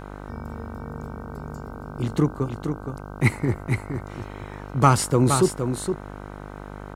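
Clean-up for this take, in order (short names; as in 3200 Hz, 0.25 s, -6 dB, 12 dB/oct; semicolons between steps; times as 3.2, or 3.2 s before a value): de-hum 50 Hz, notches 31; inverse comb 0.467 s -7 dB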